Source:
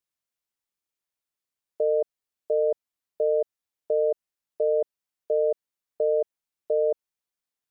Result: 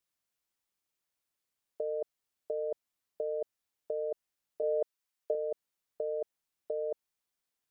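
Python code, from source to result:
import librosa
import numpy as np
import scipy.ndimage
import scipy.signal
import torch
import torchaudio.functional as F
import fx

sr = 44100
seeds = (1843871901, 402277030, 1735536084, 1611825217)

y = fx.low_shelf(x, sr, hz=460.0, db=-10.0, at=(4.62, 5.35))
y = fx.over_compress(y, sr, threshold_db=-29.0, ratio=-1.0)
y = y * librosa.db_to_amplitude(-4.0)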